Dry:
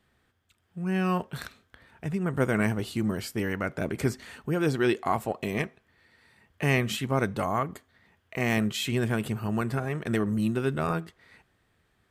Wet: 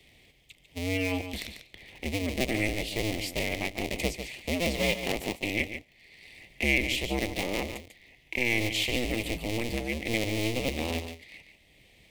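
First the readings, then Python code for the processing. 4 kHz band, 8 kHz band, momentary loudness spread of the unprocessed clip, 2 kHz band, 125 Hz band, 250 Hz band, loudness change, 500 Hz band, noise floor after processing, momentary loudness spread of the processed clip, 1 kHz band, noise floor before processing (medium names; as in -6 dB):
+6.0 dB, +4.0 dB, 10 LU, +2.5 dB, -6.0 dB, -4.5 dB, -1.0 dB, -2.5 dB, -61 dBFS, 15 LU, -7.5 dB, -70 dBFS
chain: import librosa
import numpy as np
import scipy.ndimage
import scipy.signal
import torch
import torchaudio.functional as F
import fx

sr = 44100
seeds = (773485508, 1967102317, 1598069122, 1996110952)

p1 = fx.cycle_switch(x, sr, every=2, mode='inverted')
p2 = fx.curve_eq(p1, sr, hz=(690.0, 1500.0, 2100.0, 7800.0), db=(0, -21, 10, 3))
p3 = p2 + fx.echo_single(p2, sr, ms=145, db=-10.5, dry=0)
p4 = fx.band_squash(p3, sr, depth_pct=40)
y = p4 * librosa.db_to_amplitude(-3.5)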